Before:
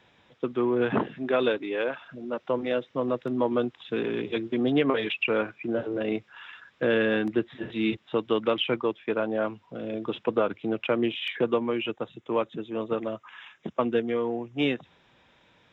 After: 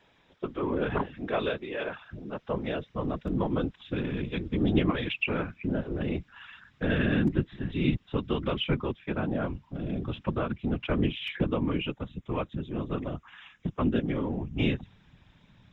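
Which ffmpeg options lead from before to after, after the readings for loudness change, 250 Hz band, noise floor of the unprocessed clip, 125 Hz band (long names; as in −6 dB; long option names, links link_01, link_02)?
−2.5 dB, −0.5 dB, −63 dBFS, +9.0 dB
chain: -af "asubboost=boost=10.5:cutoff=130,afftfilt=real='hypot(re,im)*cos(2*PI*random(0))':imag='hypot(re,im)*sin(2*PI*random(1))':win_size=512:overlap=0.75,volume=3dB"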